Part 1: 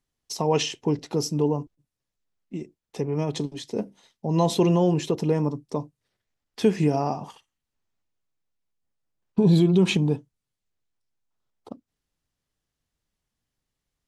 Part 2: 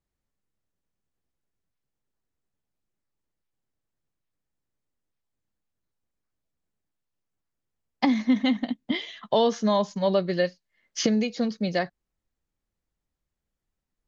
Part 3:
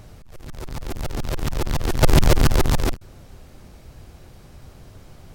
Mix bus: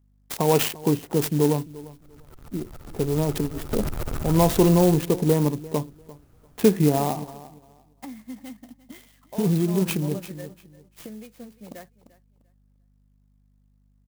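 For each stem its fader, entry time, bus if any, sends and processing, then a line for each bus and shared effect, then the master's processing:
+3.0 dB, 0.00 s, no send, echo send -19.5 dB, local Wiener filter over 15 samples; peaking EQ 2.8 kHz +2 dB; auto duck -7 dB, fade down 1.20 s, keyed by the second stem
-16.5 dB, 0.00 s, no send, echo send -18.5 dB, hum 50 Hz, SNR 14 dB
-15.5 dB, 1.70 s, no send, echo send -5 dB, peaking EQ 1.3 kHz +8 dB 0.24 oct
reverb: none
echo: feedback delay 346 ms, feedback 21%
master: sampling jitter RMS 0.064 ms

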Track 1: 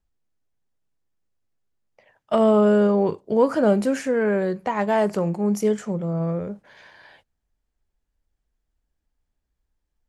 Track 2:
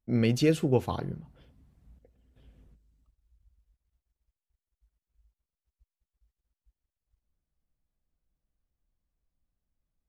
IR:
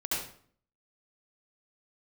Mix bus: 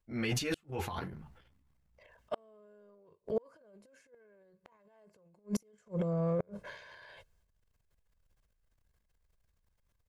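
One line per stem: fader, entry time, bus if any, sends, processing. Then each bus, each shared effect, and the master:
-7.5 dB, 0.00 s, no send, comb 1.9 ms, depth 66%
0.0 dB, 0.00 s, no send, graphic EQ 125/250/500/1000/2000 Hz -4/-5/-6/+4/+5 dB; three-phase chorus; auto duck -12 dB, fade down 1.90 s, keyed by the first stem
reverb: none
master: transient shaper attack -6 dB, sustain +12 dB; inverted gate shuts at -22 dBFS, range -37 dB

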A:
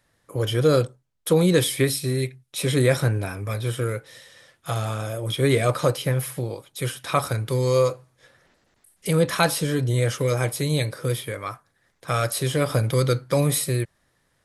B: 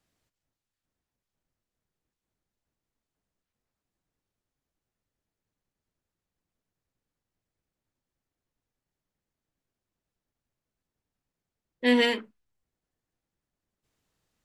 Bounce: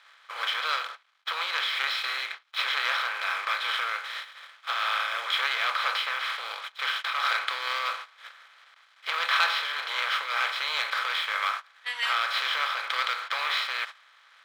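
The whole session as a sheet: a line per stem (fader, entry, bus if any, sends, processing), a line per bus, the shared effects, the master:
-5.5 dB, 0.00 s, no send, spectral levelling over time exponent 0.4; inverse Chebyshev low-pass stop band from 9 kHz, stop band 50 dB; waveshaping leveller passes 2
+1.0 dB, 0.00 s, no send, none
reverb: none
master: gate -23 dBFS, range -15 dB; high-pass 1.1 kHz 24 dB/octave; random flutter of the level, depth 65%

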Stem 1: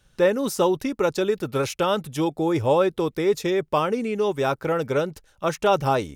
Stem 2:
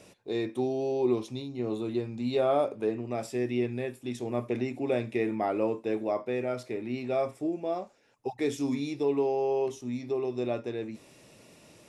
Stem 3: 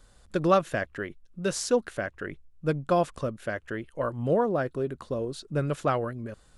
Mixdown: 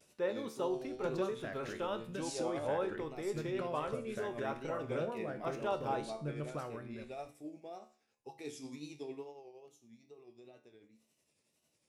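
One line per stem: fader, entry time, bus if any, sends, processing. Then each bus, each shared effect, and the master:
-8.5 dB, 0.00 s, no send, high-pass 210 Hz 6 dB/octave; treble shelf 5.2 kHz -12 dB
9.14 s -7 dB -> 9.49 s -17.5 dB, 0.00 s, no send, wow and flutter 110 cents; treble shelf 3.5 kHz +10.5 dB; tremolo triangle 11 Hz, depth 55%
-2.5 dB, 0.70 s, no send, compression 3:1, threshold -31 dBFS, peak gain reduction 11.5 dB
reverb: none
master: feedback comb 74 Hz, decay 0.45 s, harmonics all, mix 70%

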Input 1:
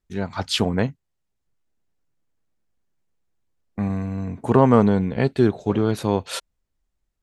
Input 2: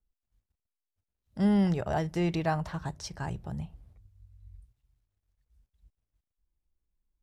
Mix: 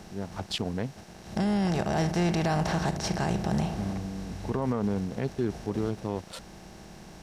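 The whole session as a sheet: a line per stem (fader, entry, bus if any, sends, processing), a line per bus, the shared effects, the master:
-8.5 dB, 0.00 s, no send, local Wiener filter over 25 samples
+2.5 dB, 0.00 s, no send, spectral levelling over time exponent 0.4; treble shelf 5.2 kHz +4.5 dB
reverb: none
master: peak limiter -18.5 dBFS, peak gain reduction 8.5 dB

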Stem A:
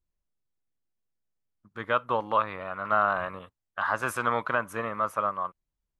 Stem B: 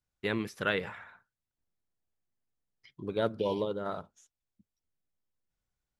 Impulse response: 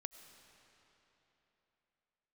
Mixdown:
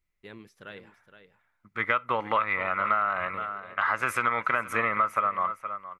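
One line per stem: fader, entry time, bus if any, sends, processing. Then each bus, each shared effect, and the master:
+2.5 dB, 0.00 s, no send, echo send -16.5 dB, peaking EQ 2.2 kHz +13 dB 0.58 oct; gain riding 0.5 s; small resonant body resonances 1.3/2 kHz, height 9 dB, ringing for 25 ms
-14.0 dB, 0.00 s, no send, echo send -11 dB, auto duck -14 dB, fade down 0.95 s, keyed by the first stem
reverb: none
echo: delay 467 ms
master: compression 10:1, threshold -21 dBFS, peak gain reduction 10 dB

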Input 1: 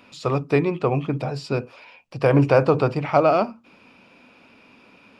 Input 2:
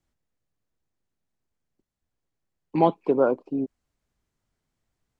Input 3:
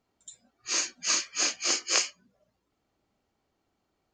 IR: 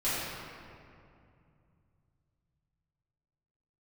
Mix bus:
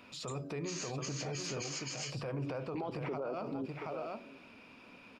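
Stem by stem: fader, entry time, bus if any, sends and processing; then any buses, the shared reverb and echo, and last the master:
-4.5 dB, 0.00 s, no send, echo send -8 dB, band-stop 830 Hz, Q 25; de-hum 94.57 Hz, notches 7; compression, threshold -26 dBFS, peak gain reduction 14.5 dB
-8.5 dB, 0.00 s, no send, echo send -21.5 dB, harmonic-percussive split percussive +8 dB
-4.0 dB, 0.00 s, no send, no echo send, compressor with a negative ratio -34 dBFS, ratio -1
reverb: none
echo: delay 728 ms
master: peak limiter -30.5 dBFS, peak gain reduction 21 dB

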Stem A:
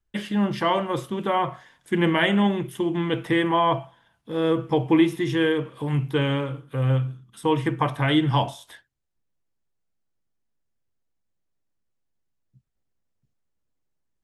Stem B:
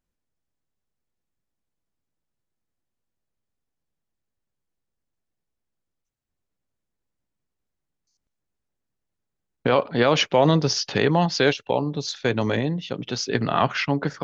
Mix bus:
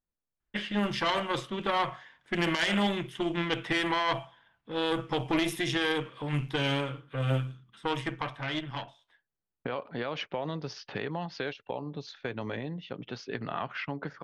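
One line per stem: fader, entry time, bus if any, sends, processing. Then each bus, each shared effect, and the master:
+1.5 dB, 0.40 s, no send, Chebyshev shaper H 3 -21 dB, 4 -17 dB, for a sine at -7.5 dBFS; auto duck -22 dB, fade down 1.95 s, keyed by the second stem
-3.0 dB, 0.00 s, no send, compression 4:1, threshold -23 dBFS, peak gain reduction 9.5 dB; treble shelf 2 kHz -11.5 dB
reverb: none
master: level-controlled noise filter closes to 1.8 kHz, open at -17 dBFS; tilt shelf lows -6.5 dB, about 1.3 kHz; peak limiter -16.5 dBFS, peak gain reduction 12 dB

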